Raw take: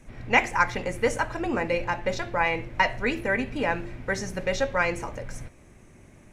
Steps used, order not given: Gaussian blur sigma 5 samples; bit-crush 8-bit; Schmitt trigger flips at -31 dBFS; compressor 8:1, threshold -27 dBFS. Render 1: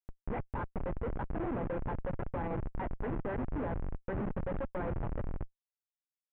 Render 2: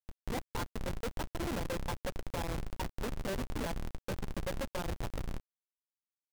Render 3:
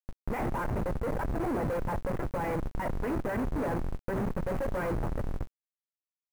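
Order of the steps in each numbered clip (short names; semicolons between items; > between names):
compressor > bit-crush > Schmitt trigger > Gaussian blur; compressor > Gaussian blur > Schmitt trigger > bit-crush; Schmitt trigger > Gaussian blur > bit-crush > compressor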